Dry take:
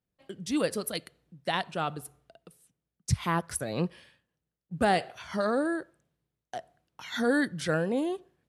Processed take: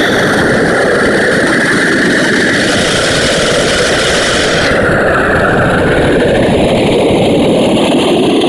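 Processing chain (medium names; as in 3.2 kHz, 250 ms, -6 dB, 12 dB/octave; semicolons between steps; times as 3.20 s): reverse spectral sustain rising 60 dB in 2.19 s; peaking EQ 2.8 kHz +5.5 dB 1.4 oct; transient shaper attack +10 dB, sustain +6 dB; Paulstretch 9.3×, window 0.05 s, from 7.16 s; whisper effect; loudness maximiser +35 dB; trim -1 dB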